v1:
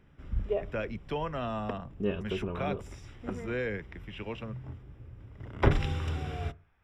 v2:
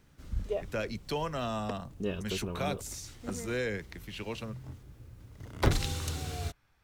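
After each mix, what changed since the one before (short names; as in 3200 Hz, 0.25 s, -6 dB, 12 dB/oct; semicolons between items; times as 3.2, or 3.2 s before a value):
background: send off; master: remove polynomial smoothing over 25 samples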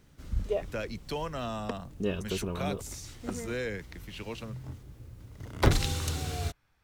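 background +3.0 dB; reverb: off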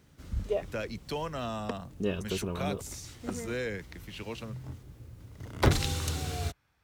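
master: add HPF 47 Hz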